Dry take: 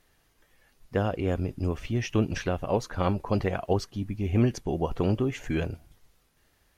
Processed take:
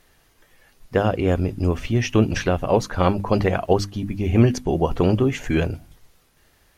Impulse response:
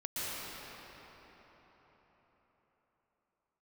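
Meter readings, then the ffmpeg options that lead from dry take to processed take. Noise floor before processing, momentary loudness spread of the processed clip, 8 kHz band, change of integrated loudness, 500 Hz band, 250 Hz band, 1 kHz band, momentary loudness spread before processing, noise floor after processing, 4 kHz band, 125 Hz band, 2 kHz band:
-67 dBFS, 6 LU, +8.0 dB, +7.5 dB, +8.0 dB, +7.0 dB, +8.0 dB, 6 LU, -60 dBFS, +8.0 dB, +7.0 dB, +8.0 dB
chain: -af "bandreject=f=50:t=h:w=6,bandreject=f=100:t=h:w=6,bandreject=f=150:t=h:w=6,bandreject=f=200:t=h:w=6,bandreject=f=250:t=h:w=6,bandreject=f=300:t=h:w=6,volume=8dB"

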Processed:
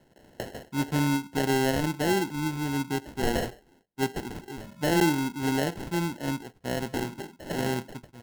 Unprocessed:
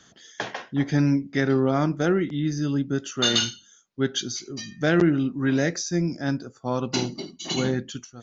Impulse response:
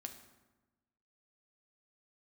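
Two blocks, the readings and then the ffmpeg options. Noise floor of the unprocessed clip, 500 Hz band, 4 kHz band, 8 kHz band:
-56 dBFS, -3.5 dB, -8.5 dB, n/a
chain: -af "equalizer=f=400:t=o:w=0.77:g=3.5,acrusher=samples=37:mix=1:aa=0.000001,volume=-5.5dB"

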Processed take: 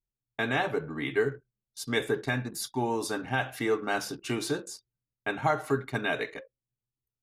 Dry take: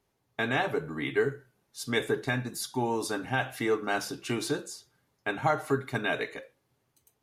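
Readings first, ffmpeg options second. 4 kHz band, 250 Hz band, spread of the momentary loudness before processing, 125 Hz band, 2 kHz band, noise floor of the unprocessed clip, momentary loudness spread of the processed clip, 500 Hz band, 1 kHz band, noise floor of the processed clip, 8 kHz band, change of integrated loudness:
0.0 dB, 0.0 dB, 12 LU, 0.0 dB, 0.0 dB, -76 dBFS, 12 LU, 0.0 dB, 0.0 dB, under -85 dBFS, 0.0 dB, 0.0 dB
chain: -af "anlmdn=0.0251"

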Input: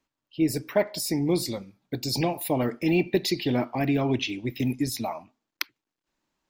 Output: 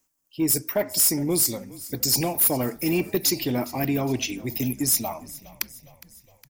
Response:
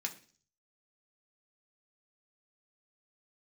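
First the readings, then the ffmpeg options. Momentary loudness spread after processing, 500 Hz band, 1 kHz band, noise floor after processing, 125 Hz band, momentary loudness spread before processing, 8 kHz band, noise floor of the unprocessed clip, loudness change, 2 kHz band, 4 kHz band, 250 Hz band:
14 LU, -1.0 dB, -0.5 dB, -64 dBFS, -0.5 dB, 10 LU, +13.5 dB, under -85 dBFS, +4.0 dB, -1.0 dB, +3.5 dB, -0.5 dB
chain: -filter_complex "[0:a]aexciter=amount=4.6:drive=8.1:freq=5.6k,asoftclip=type=tanh:threshold=-13dB,asplit=6[a][b][c][d][e][f];[b]adelay=411,afreqshift=-38,volume=-19dB[g];[c]adelay=822,afreqshift=-76,volume=-24dB[h];[d]adelay=1233,afreqshift=-114,volume=-29.1dB[i];[e]adelay=1644,afreqshift=-152,volume=-34.1dB[j];[f]adelay=2055,afreqshift=-190,volume=-39.1dB[k];[a][g][h][i][j][k]amix=inputs=6:normalize=0"

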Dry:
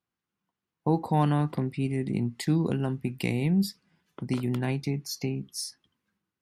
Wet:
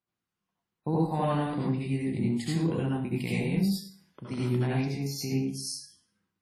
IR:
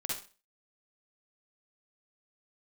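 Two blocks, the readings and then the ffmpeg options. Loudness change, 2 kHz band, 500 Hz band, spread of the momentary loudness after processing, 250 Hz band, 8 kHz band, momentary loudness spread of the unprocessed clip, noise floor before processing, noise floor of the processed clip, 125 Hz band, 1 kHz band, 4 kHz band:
-1.0 dB, -0.5 dB, 0.0 dB, 9 LU, -1.0 dB, 0.0 dB, 8 LU, under -85 dBFS, under -85 dBFS, -1.5 dB, -2.0 dB, -0.5 dB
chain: -filter_complex "[0:a]aphaser=in_gain=1:out_gain=1:delay=1.9:decay=0.27:speed=1.3:type=sinusoidal[a];[1:a]atrim=start_sample=2205,asetrate=30429,aresample=44100[b];[a][b]afir=irnorm=-1:irlink=0,volume=-6dB" -ar 44100 -c:a wmav2 -b:a 32k

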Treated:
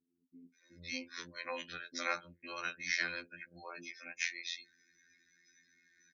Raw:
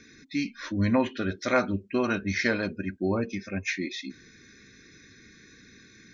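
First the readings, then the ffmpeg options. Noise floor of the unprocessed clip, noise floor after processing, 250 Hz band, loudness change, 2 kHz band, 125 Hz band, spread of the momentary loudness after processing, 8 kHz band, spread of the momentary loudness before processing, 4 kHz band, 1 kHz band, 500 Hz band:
-55 dBFS, -81 dBFS, -25.0 dB, -11.5 dB, -6.5 dB, -27.5 dB, 13 LU, n/a, 7 LU, -4.0 dB, -11.0 dB, -18.5 dB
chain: -filter_complex "[0:a]afftdn=nr=18:nf=-48,lowpass=f=3k:p=1,aderivative,afftfilt=real='hypot(re,im)*cos(PI*b)':imag='0':win_size=2048:overlap=0.75,acrossover=split=410[a][b];[b]adelay=540[c];[a][c]amix=inputs=2:normalize=0,volume=9.5dB"

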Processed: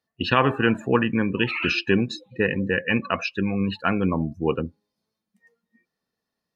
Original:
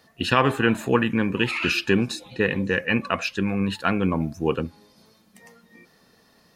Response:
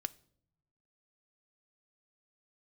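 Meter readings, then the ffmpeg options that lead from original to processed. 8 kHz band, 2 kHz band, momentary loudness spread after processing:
n/a, -0.5 dB, 5 LU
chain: -af "afftdn=nr=25:nf=-33"

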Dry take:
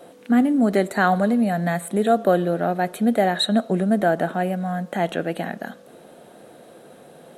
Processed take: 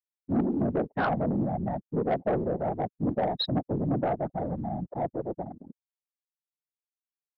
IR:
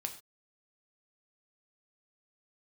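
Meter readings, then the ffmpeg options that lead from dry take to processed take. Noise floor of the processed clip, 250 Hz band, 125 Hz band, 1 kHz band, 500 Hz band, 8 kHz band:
under -85 dBFS, -9.0 dB, -4.0 dB, -8.5 dB, -8.0 dB, under -40 dB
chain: -af "bandreject=f=1.7k:w=9.4,afftfilt=real='re*gte(hypot(re,im),0.158)':imag='im*gte(hypot(re,im),0.158)':win_size=1024:overlap=0.75,afwtdn=0.0398,afftfilt=real='hypot(re,im)*cos(2*PI*random(0))':imag='hypot(re,im)*sin(2*PI*random(1))':win_size=512:overlap=0.75,aresample=11025,asoftclip=type=tanh:threshold=-19.5dB,aresample=44100"

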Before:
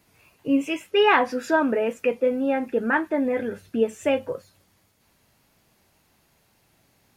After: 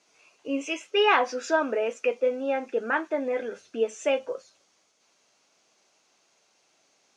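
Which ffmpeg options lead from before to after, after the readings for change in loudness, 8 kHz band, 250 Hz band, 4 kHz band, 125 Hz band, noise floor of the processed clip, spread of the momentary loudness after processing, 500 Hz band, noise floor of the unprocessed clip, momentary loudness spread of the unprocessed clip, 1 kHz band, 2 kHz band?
-3.5 dB, +2.5 dB, -9.0 dB, 0.0 dB, under -10 dB, -68 dBFS, 11 LU, -2.5 dB, -65 dBFS, 9 LU, -3.0 dB, -3.0 dB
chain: -af "highpass=450,equalizer=f=910:t=q:w=4:g=-4,equalizer=f=1.8k:t=q:w=4:g=-6,equalizer=f=6.1k:t=q:w=4:g=8,lowpass=f=7.6k:w=0.5412,lowpass=f=7.6k:w=1.3066"

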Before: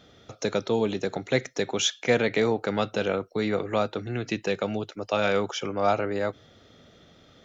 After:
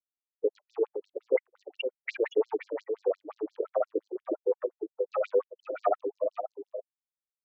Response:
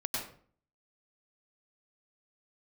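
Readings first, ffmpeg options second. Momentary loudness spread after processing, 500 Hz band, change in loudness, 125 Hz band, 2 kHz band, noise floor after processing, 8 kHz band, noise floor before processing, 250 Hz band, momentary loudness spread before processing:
10 LU, -3.0 dB, -5.5 dB, under -40 dB, -12.5 dB, under -85 dBFS, n/a, -56 dBFS, -11.0 dB, 7 LU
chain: -filter_complex "[0:a]afftfilt=real='re*gte(hypot(re,im),0.158)':imag='im*gte(hypot(re,im),0.158)':win_size=1024:overlap=0.75,asplit=2[a][b];[b]asoftclip=type=hard:threshold=-22dB,volume=-6dB[c];[a][c]amix=inputs=2:normalize=0,aecho=1:1:511:0.398,aeval=exprs='0.355*(cos(1*acos(clip(val(0)/0.355,-1,1)))-cos(1*PI/2))+0.0708*(cos(2*acos(clip(val(0)/0.355,-1,1)))-cos(2*PI/2))':c=same,afftfilt=real='re*between(b*sr/1024,390*pow(5800/390,0.5+0.5*sin(2*PI*5.7*pts/sr))/1.41,390*pow(5800/390,0.5+0.5*sin(2*PI*5.7*pts/sr))*1.41)':imag='im*between(b*sr/1024,390*pow(5800/390,0.5+0.5*sin(2*PI*5.7*pts/sr))/1.41,390*pow(5800/390,0.5+0.5*sin(2*PI*5.7*pts/sr))*1.41)':win_size=1024:overlap=0.75"

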